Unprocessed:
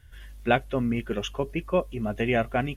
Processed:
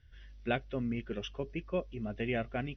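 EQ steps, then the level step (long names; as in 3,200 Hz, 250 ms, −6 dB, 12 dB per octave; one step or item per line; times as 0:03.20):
linear-phase brick-wall low-pass 6,100 Hz
parametric band 950 Hz −7 dB 0.97 octaves
−8.0 dB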